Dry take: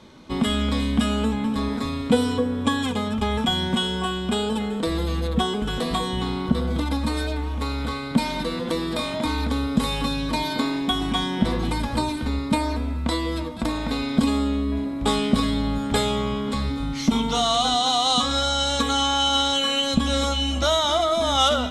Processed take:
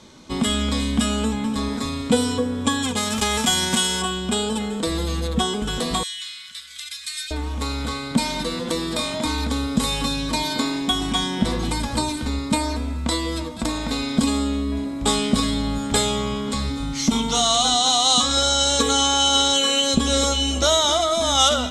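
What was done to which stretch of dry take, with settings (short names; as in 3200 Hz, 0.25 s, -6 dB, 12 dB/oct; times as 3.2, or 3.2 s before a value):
2.96–4.01 spectral whitening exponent 0.6
6.03–7.31 inverse Chebyshev high-pass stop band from 910 Hz
18.37–20.93 bell 420 Hz +12.5 dB 0.43 oct
whole clip: bell 7200 Hz +11 dB 1.3 oct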